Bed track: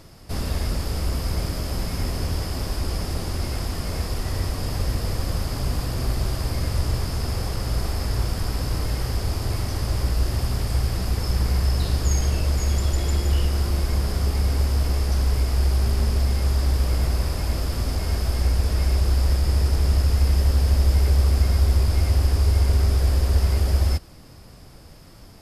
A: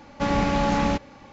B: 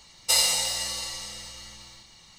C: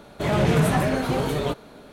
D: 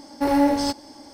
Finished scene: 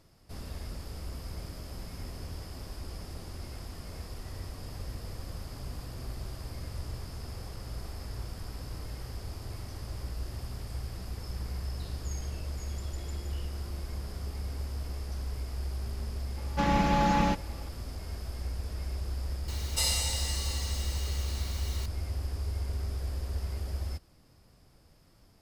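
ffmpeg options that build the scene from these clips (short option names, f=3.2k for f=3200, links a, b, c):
-filter_complex "[0:a]volume=-15dB[a];[1:a]aecho=1:1:5.9:0.98[b];[2:a]aeval=exprs='val(0)+0.5*0.0299*sgn(val(0))':c=same[c];[b]atrim=end=1.32,asetpts=PTS-STARTPTS,volume=-6.5dB,afade=t=in:d=0.004:c=hsin,afade=t=out:st=1.316:d=0.004:c=hsin,adelay=16370[d];[c]atrim=end=2.38,asetpts=PTS-STARTPTS,volume=-9dB,afade=t=in:d=0.004:c=hsin,afade=t=out:st=2.376:d=0.004:c=hsin,adelay=19480[e];[a][d][e]amix=inputs=3:normalize=0"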